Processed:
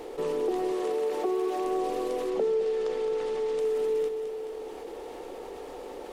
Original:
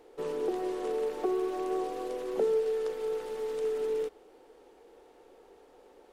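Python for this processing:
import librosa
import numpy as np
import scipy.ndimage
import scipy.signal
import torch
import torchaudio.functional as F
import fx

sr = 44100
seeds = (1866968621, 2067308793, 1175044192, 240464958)

y = fx.low_shelf(x, sr, hz=120.0, db=-11.5, at=(0.71, 1.65))
y = fx.lowpass(y, sr, hz=6900.0, slope=12, at=(2.3, 3.59))
y = fx.peak_eq(y, sr, hz=1500.0, db=-5.0, octaves=0.24)
y = fx.echo_feedback(y, sr, ms=214, feedback_pct=47, wet_db=-13.5)
y = fx.env_flatten(y, sr, amount_pct=50)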